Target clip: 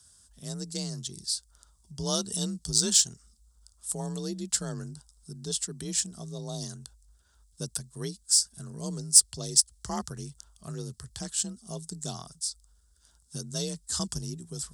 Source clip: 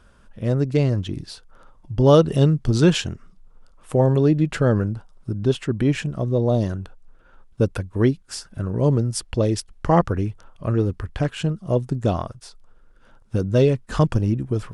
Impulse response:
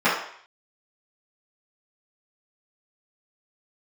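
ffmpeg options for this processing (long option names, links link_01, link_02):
-af "equalizer=frequency=250:width_type=o:width=0.33:gain=-10,equalizer=frequency=500:width_type=o:width=0.33:gain=-11,equalizer=frequency=5000:width_type=o:width=0.33:gain=3,equalizer=frequency=8000:width_type=o:width=0.33:gain=8,afreqshift=37,aexciter=amount=10.8:drive=7.5:freq=3800,volume=-15.5dB"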